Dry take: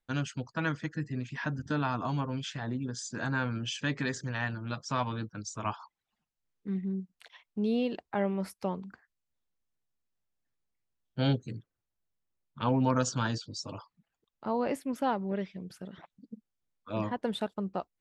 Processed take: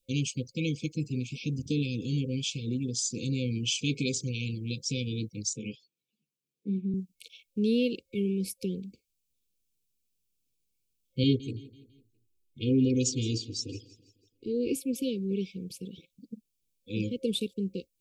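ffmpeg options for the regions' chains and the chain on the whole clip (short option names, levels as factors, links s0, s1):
-filter_complex "[0:a]asettb=1/sr,asplit=3[s0][s1][s2];[s0]atrim=end=5.534[s3];[s1]atrim=start=5.53:end=6.94,asetpts=PTS-STARTPTS,afade=t=in:d=0.004:c=qsin,afade=t=out:st=1.406:d=0.004:c=qsin,highpass=f=120:w=0.5412,highpass=f=120:w=1.3066,highshelf=f=2400:g=-11,asplit=2[s4][s5];[s5]adelay=14,volume=0.447[s6];[s4][s6]amix=inputs=2:normalize=0,atrim=end_sample=62181[s7];[s2]atrim=start=6.936[s8];[s3][s7]acrossfade=d=0.004:c1=hsin:c2=qsin[s9];[s9][s8]acrossfade=d=0.004:c1=qsin:c2=hsin,asettb=1/sr,asplit=3[s10][s11][s12];[s10]atrim=end=11.234[s13];[s11]atrim=start=11.23:end=14.73,asetpts=PTS-STARTPTS,afade=t=in:d=0.004:c=qsin,afade=t=out:st=3.496:d=0.004:c=qsin,highshelf=f=2100:g=-7.5,aecho=1:1:2.8:0.81,atrim=end_sample=154350,aecho=1:1:166|332|498|664:0.119|0.0547|0.0251|0.0116,atrim=end_sample=154350[s14];[s12]atrim=start=14.726[s15];[s13][s14]acrossfade=d=0.004:c1=hsin:c2=qsin[s16];[s16][s15]acrossfade=d=0.004:c1=qsin:c2=hsin,afftfilt=real='re*(1-between(b*sr/4096,530,2200))':imag='im*(1-between(b*sr/4096,530,2200))':win_size=4096:overlap=0.75,highshelf=f=4600:g=10,volume=1.41"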